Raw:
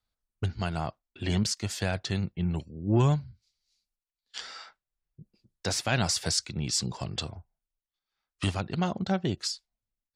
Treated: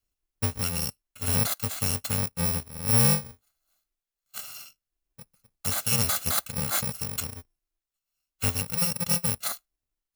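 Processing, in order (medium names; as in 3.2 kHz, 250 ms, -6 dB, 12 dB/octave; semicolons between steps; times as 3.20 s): bit-reversed sample order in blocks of 128 samples; trim +2 dB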